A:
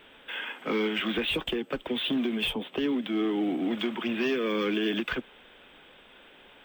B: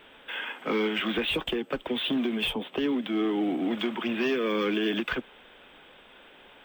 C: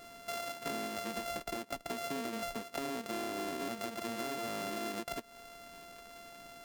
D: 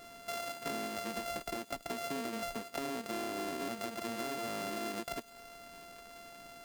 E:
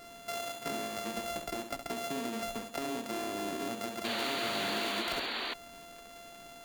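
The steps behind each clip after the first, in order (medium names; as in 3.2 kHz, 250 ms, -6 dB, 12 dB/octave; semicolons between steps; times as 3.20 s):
peaking EQ 870 Hz +2.5 dB 1.8 oct
sorted samples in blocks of 64 samples; compression 10:1, threshold -37 dBFS, peak gain reduction 14 dB; trim +1 dB
feedback echo behind a high-pass 101 ms, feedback 61%, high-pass 4.3 kHz, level -13.5 dB
flutter echo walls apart 11.5 m, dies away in 0.49 s; painted sound noise, 4.04–5.54 s, 220–4700 Hz -38 dBFS; trim +1.5 dB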